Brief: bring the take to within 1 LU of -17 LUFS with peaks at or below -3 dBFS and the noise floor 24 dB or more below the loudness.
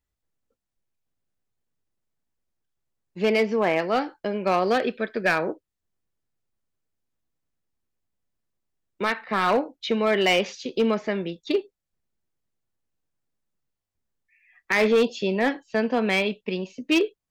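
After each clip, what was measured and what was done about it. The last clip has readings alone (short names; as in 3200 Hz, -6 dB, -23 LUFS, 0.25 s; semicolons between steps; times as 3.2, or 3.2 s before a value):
clipped 0.6%; flat tops at -14.0 dBFS; loudness -24.0 LUFS; peak -14.0 dBFS; loudness target -17.0 LUFS
-> clip repair -14 dBFS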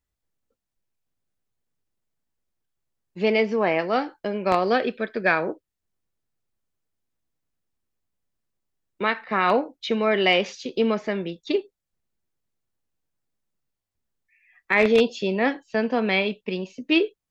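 clipped 0.0%; loudness -23.5 LUFS; peak -5.0 dBFS; loudness target -17.0 LUFS
-> gain +6.5 dB; limiter -3 dBFS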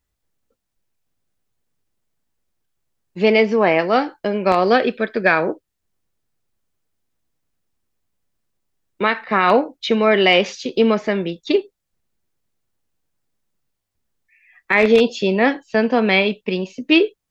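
loudness -17.5 LUFS; peak -3.0 dBFS; noise floor -78 dBFS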